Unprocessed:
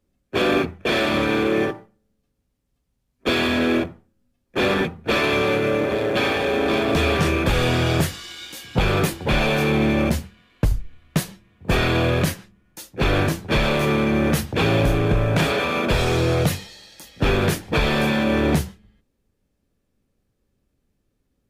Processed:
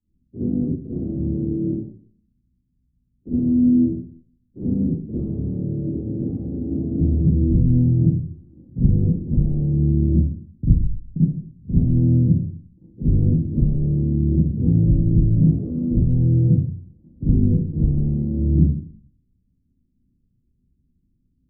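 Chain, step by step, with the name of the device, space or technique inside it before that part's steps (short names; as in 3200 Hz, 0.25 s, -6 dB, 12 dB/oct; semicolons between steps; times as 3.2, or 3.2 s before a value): next room (LPF 270 Hz 24 dB/oct; reverb RT60 0.50 s, pre-delay 37 ms, DRR -11.5 dB); gain -7 dB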